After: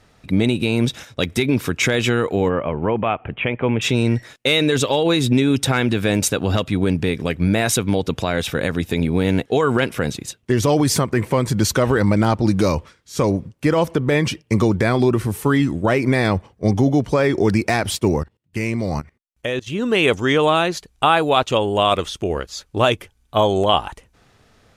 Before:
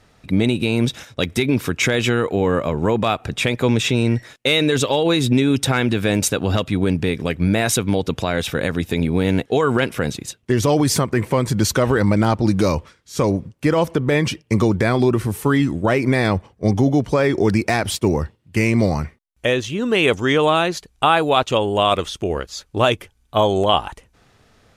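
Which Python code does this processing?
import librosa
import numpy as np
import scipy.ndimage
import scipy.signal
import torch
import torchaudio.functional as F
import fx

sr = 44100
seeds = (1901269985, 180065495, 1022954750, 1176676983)

y = fx.cheby_ripple(x, sr, hz=3200.0, ripple_db=3, at=(2.48, 3.81), fade=0.02)
y = fx.level_steps(y, sr, step_db=22, at=(18.19, 19.66), fade=0.02)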